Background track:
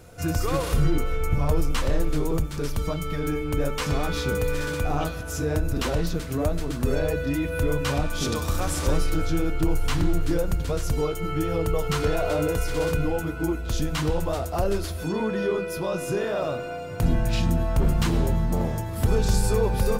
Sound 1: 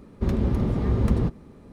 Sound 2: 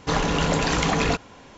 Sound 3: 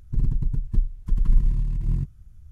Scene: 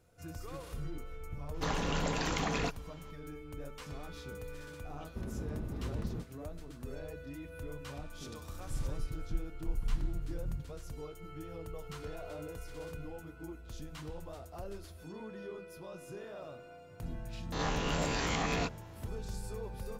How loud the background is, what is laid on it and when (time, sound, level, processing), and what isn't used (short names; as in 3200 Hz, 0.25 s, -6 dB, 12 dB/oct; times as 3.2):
background track -19.5 dB
1.54 add 2 -11.5 dB
4.94 add 1 -17 dB
8.57 add 3 -15 dB
17.52 add 2 -13.5 dB + spectral swells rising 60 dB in 0.67 s